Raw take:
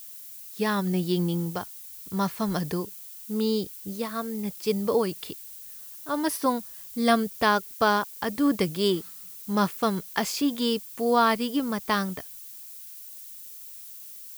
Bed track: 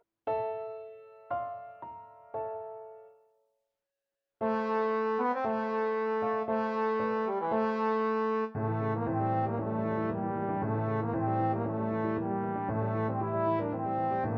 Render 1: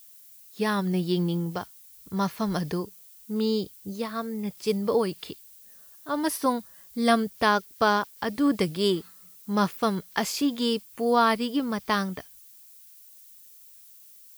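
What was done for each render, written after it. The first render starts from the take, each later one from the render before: noise print and reduce 8 dB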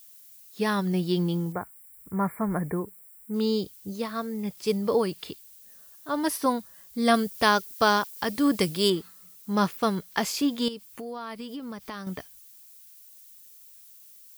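1.52–3.34 brick-wall FIR band-stop 2400–7200 Hz; 7.14–8.9 high shelf 3600 Hz +7.5 dB; 10.68–12.07 compressor, threshold -34 dBFS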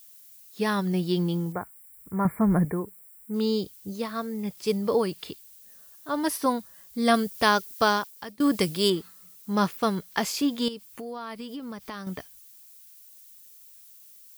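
2.25–2.65 low shelf 290 Hz +10.5 dB; 7.82–8.4 fade out, to -23 dB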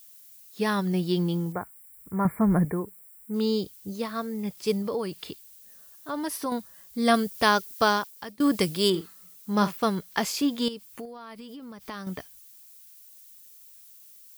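4.82–6.52 compressor 2:1, threshold -30 dBFS; 8.89–9.82 doubler 48 ms -13 dB; 11.05–11.89 compressor 3:1, threshold -40 dBFS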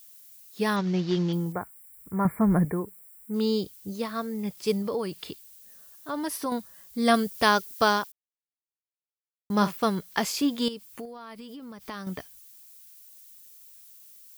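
0.76–1.33 CVSD 32 kbps; 8.12–9.5 mute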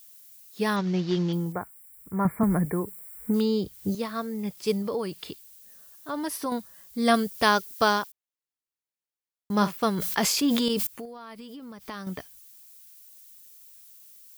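2.43–3.95 three-band squash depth 100%; 9.93–10.87 sustainer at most 23 dB/s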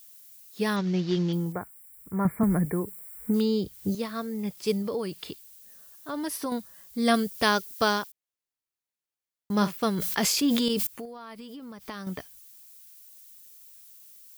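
dynamic EQ 950 Hz, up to -4 dB, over -39 dBFS, Q 1.1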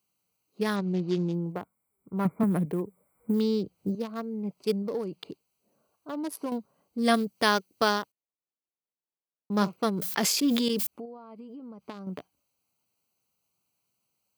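Wiener smoothing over 25 samples; HPF 160 Hz 12 dB/oct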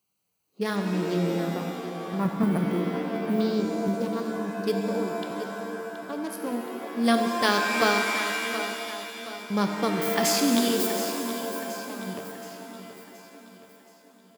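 feedback echo 0.724 s, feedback 47%, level -11.5 dB; shimmer reverb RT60 2.4 s, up +7 st, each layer -2 dB, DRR 4.5 dB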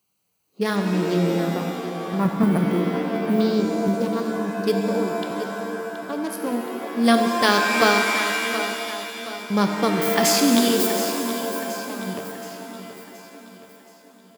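gain +5 dB; limiter -2 dBFS, peak gain reduction 1 dB

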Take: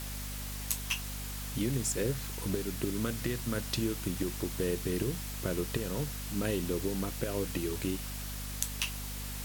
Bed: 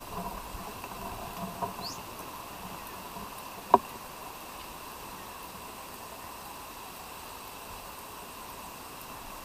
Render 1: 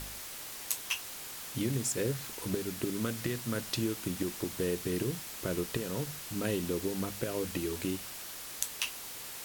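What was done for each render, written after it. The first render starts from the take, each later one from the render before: de-hum 50 Hz, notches 5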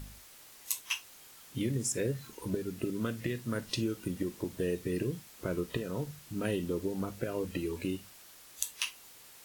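noise print and reduce 11 dB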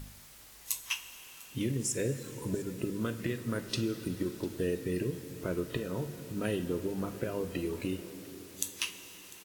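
echo 0.699 s -20.5 dB; plate-style reverb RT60 4.6 s, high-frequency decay 0.75×, DRR 10 dB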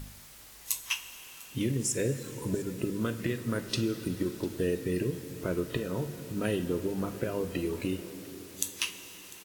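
gain +2.5 dB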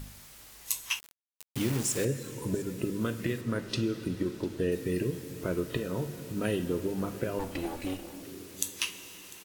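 0.99–2.05 requantised 6-bit, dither none; 3.41–4.72 high shelf 7400 Hz -10 dB; 7.39–8.23 minimum comb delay 3.5 ms

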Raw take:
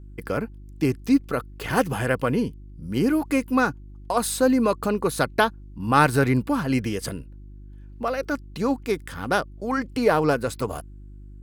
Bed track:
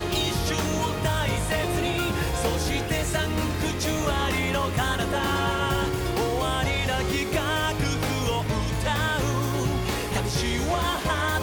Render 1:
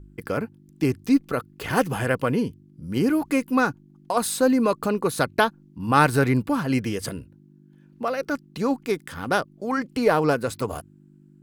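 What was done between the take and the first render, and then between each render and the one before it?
de-hum 50 Hz, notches 2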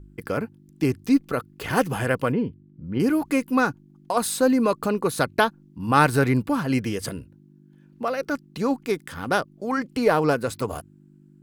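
2.32–3 air absorption 410 m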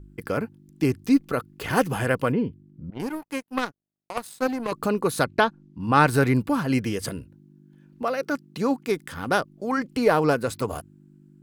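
2.9–4.72 power-law curve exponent 2; 5.24–6.07 air absorption 59 m; 8.02–8.88 HPF 92 Hz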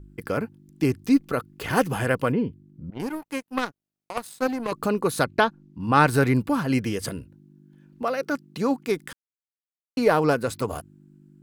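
9.13–9.97 mute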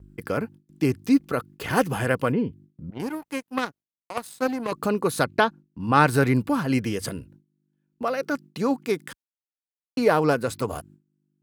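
gate with hold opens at -42 dBFS; HPF 51 Hz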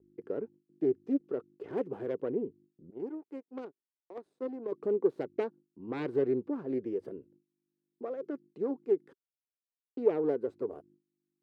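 self-modulated delay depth 0.42 ms; band-pass 390 Hz, Q 4.7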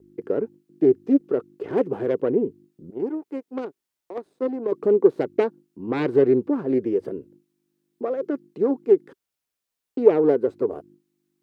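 gain +11.5 dB

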